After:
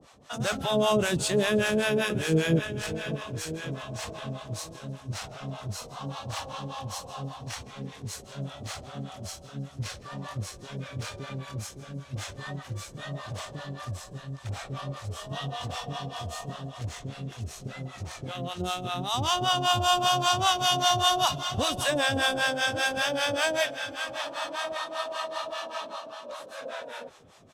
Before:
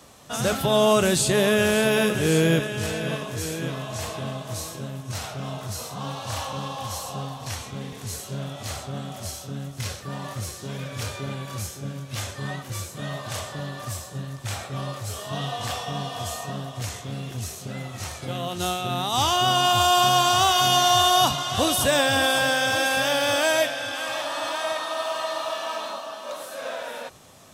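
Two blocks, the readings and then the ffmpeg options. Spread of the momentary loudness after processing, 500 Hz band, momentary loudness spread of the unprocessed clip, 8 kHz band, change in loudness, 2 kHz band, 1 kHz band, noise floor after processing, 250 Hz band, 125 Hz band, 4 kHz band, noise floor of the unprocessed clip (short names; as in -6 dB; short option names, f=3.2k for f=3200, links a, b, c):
16 LU, -5.5 dB, 15 LU, -7.0 dB, -5.0 dB, -4.5 dB, -5.5 dB, -47 dBFS, -4.5 dB, -4.0 dB, -5.0 dB, -40 dBFS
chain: -filter_complex "[0:a]adynamicsmooth=sensitivity=6:basefreq=7.3k,acrossover=split=610[a][b];[a]aeval=exprs='val(0)*(1-1/2+1/2*cos(2*PI*5.1*n/s))':c=same[c];[b]aeval=exprs='val(0)*(1-1/2-1/2*cos(2*PI*5.1*n/s))':c=same[d];[c][d]amix=inputs=2:normalize=0,asplit=4[e][f][g][h];[f]adelay=161,afreqshift=-68,volume=-22dB[i];[g]adelay=322,afreqshift=-136,volume=-30.9dB[j];[h]adelay=483,afreqshift=-204,volume=-39.7dB[k];[e][i][j][k]amix=inputs=4:normalize=0"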